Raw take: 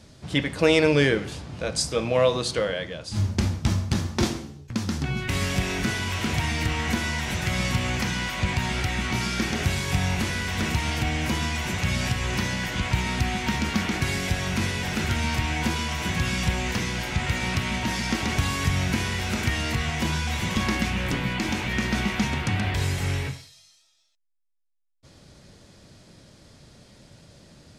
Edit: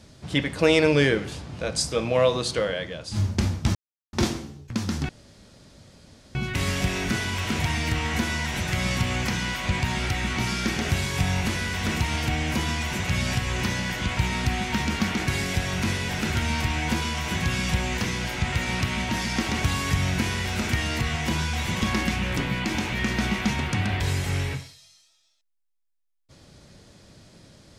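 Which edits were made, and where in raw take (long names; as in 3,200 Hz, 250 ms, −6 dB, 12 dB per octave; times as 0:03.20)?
0:03.75–0:04.13: silence
0:05.09: splice in room tone 1.26 s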